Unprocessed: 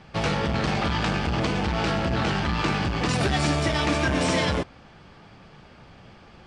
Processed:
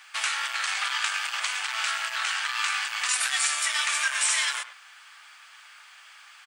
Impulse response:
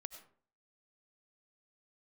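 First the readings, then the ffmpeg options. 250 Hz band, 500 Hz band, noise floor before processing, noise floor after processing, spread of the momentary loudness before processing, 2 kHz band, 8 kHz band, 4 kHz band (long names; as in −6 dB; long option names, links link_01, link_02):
below −40 dB, −24.5 dB, −50 dBFS, −51 dBFS, 2 LU, +2.5 dB, +11.0 dB, +3.0 dB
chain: -filter_complex "[0:a]highpass=frequency=1300:width=0.5412,highpass=frequency=1300:width=1.3066,aexciter=amount=5.4:drive=3.4:freq=7000,asplit=2[link_01][link_02];[link_02]acompressor=threshold=-36dB:ratio=6,volume=0.5dB[link_03];[link_01][link_03]amix=inputs=2:normalize=0,asplit=2[link_04][link_05];[link_05]adelay=100,highpass=300,lowpass=3400,asoftclip=type=hard:threshold=-18dB,volume=-12dB[link_06];[link_04][link_06]amix=inputs=2:normalize=0"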